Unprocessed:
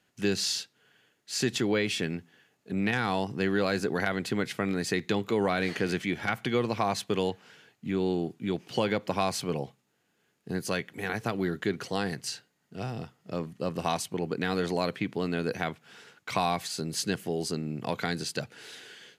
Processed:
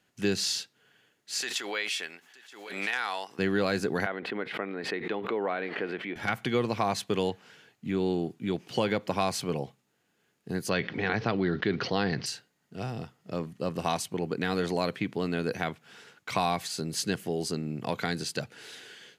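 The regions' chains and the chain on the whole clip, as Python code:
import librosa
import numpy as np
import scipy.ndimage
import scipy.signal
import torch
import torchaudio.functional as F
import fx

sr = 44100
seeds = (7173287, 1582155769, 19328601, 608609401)

y = fx.chain(x, sr, fx.highpass(hz=870.0, slope=12),
    fx.echo_single(ms=926, db=-21.5),
    fx.pre_swell(db_per_s=59.0), at=(1.41, 3.39))
y = fx.chain(y, sr, fx.highpass(hz=370.0, slope=12),
    fx.air_absorb(metres=470.0),
    fx.pre_swell(db_per_s=69.0), at=(4.06, 6.16))
y = fx.chain(y, sr, fx.steep_lowpass(hz=5300.0, slope=48),
    fx.env_flatten(amount_pct=50), at=(10.69, 12.26))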